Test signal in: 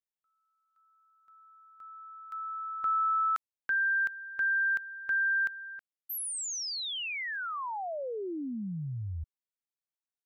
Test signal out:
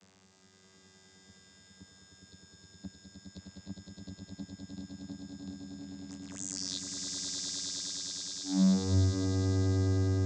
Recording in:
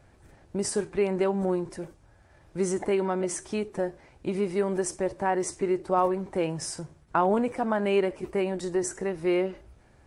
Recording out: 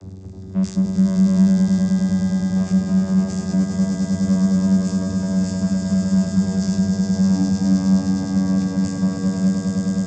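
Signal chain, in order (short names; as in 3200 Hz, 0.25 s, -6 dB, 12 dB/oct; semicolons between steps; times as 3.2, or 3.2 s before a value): brick-wall FIR band-stop 220–4300 Hz; power-law curve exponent 0.35; vocoder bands 16, saw 94.8 Hz; swelling echo 0.103 s, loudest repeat 8, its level -4 dB; gain +7.5 dB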